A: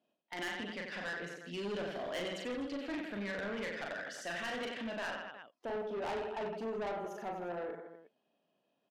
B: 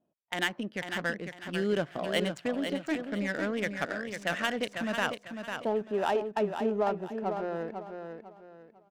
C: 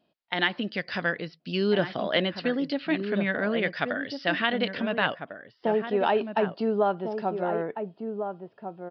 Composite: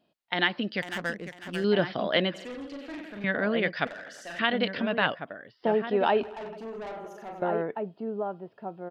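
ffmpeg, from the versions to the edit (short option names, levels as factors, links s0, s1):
-filter_complex "[0:a]asplit=3[s0][s1][s2];[2:a]asplit=5[s3][s4][s5][s6][s7];[s3]atrim=end=0.822[s8];[1:a]atrim=start=0.818:end=1.642[s9];[s4]atrim=start=1.638:end=2.342[s10];[s0]atrim=start=2.338:end=3.242[s11];[s5]atrim=start=3.238:end=3.872[s12];[s1]atrim=start=3.868:end=4.392[s13];[s6]atrim=start=4.388:end=6.232[s14];[s2]atrim=start=6.228:end=7.422[s15];[s7]atrim=start=7.418[s16];[s8][s9]acrossfade=d=0.004:c1=hsin:c2=hsin[s17];[s17][s10]acrossfade=d=0.004:c1=hsin:c2=hsin[s18];[s18][s11]acrossfade=d=0.004:c1=hsin:c2=hsin[s19];[s19][s12]acrossfade=d=0.004:c1=hsin:c2=hsin[s20];[s20][s13]acrossfade=d=0.004:c1=hsin:c2=hsin[s21];[s21][s14]acrossfade=d=0.004:c1=hsin:c2=hsin[s22];[s22][s15]acrossfade=d=0.004:c1=hsin:c2=hsin[s23];[s23][s16]acrossfade=d=0.004:c1=hsin:c2=hsin"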